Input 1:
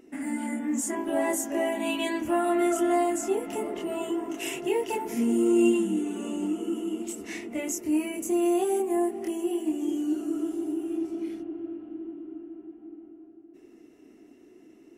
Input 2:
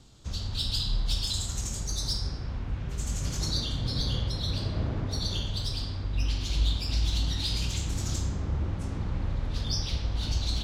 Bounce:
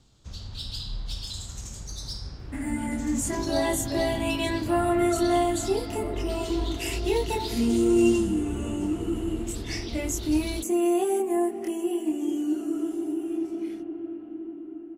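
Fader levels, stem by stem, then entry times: +1.0, -5.5 dB; 2.40, 0.00 s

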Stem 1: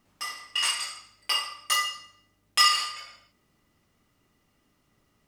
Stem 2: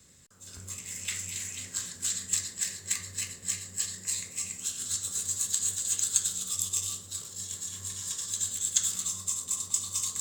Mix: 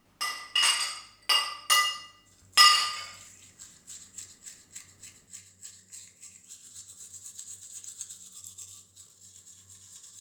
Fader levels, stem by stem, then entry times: +2.5, -14.5 dB; 0.00, 1.85 s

